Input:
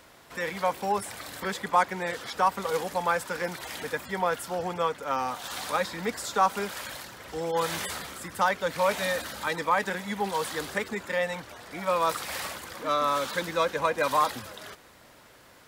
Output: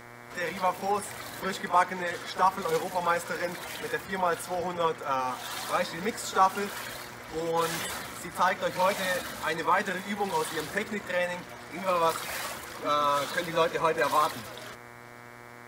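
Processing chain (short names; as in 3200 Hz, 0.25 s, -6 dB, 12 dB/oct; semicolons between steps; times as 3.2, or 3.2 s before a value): bin magnitudes rounded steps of 15 dB; pre-echo 37 ms -14 dB; on a send at -15 dB: reverb RT60 0.45 s, pre-delay 3 ms; on the sum: buzz 120 Hz, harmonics 19, -48 dBFS -1 dB/oct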